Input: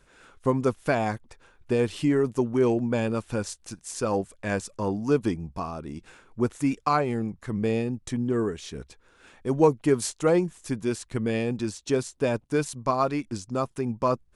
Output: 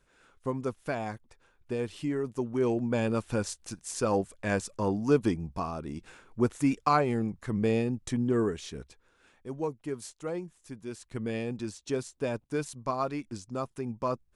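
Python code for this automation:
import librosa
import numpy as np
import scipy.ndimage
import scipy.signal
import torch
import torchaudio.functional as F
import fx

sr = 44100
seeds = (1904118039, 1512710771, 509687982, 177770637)

y = fx.gain(x, sr, db=fx.line((2.23, -8.5), (3.16, -1.0), (8.56, -1.0), (9.61, -13.5), (10.81, -13.5), (11.21, -6.5)))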